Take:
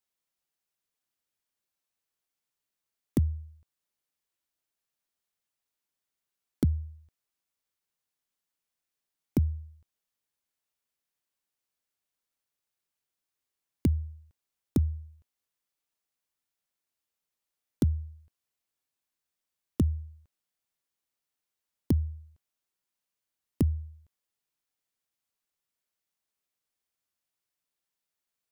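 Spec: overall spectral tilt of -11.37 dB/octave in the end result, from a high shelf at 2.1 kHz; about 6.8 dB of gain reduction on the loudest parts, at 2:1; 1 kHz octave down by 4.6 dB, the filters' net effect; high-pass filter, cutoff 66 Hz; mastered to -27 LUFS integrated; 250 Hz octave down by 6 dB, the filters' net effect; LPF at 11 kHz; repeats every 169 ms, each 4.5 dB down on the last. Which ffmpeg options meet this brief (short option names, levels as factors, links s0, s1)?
-af "highpass=66,lowpass=11000,equalizer=f=250:t=o:g=-7.5,equalizer=f=1000:t=o:g=-4.5,highshelf=f=2100:g=-5.5,acompressor=threshold=0.0158:ratio=2,aecho=1:1:169|338|507|676|845|1014|1183|1352|1521:0.596|0.357|0.214|0.129|0.0772|0.0463|0.0278|0.0167|0.01,volume=5.01"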